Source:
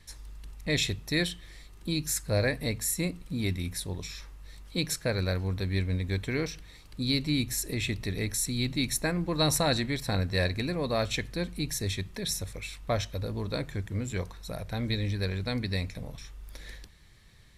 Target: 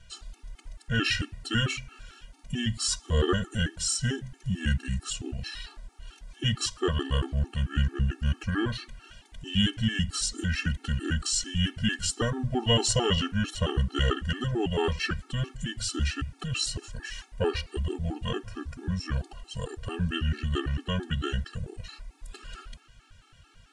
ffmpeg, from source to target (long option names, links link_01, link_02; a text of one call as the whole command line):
ffmpeg -i in.wav -af "asetrate=32667,aresample=44100,afftfilt=real='re*gt(sin(2*PI*4.5*pts/sr)*(1-2*mod(floor(b*sr/1024/230),2)),0)':imag='im*gt(sin(2*PI*4.5*pts/sr)*(1-2*mod(floor(b*sr/1024/230),2)),0)':win_size=1024:overlap=0.75,volume=5dB" out.wav